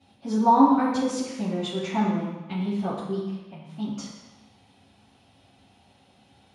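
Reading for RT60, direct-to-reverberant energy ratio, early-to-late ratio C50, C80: 1.1 s, -12.0 dB, 1.0 dB, 3.5 dB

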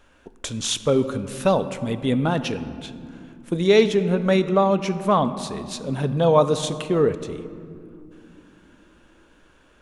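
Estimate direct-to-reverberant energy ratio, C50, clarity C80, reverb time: 11.0 dB, 12.5 dB, 13.5 dB, not exponential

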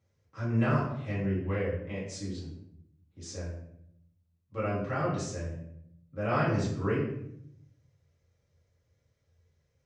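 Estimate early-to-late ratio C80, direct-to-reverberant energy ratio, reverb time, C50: 6.5 dB, -9.0 dB, 0.75 s, 3.0 dB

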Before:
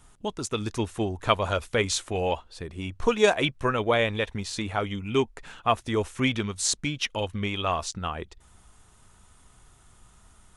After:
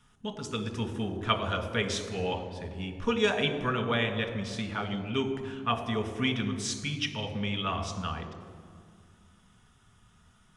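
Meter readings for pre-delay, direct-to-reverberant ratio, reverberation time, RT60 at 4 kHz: 3 ms, 4.5 dB, 2.0 s, 1.4 s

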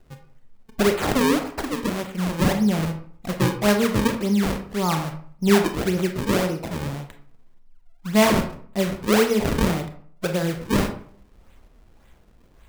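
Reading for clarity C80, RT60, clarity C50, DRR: 13.0 dB, 0.55 s, 8.5 dB, 5.5 dB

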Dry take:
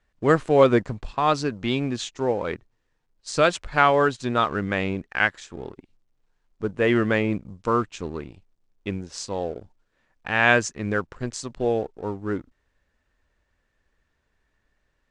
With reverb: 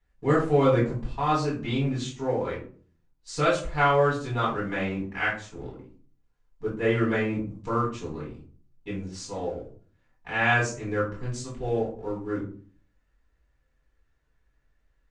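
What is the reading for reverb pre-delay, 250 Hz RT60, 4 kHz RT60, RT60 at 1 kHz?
4 ms, 0.60 s, 0.25 s, 0.40 s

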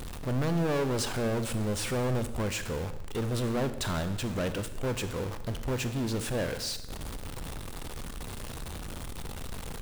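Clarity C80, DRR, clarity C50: 13.5 dB, 10.5 dB, 12.0 dB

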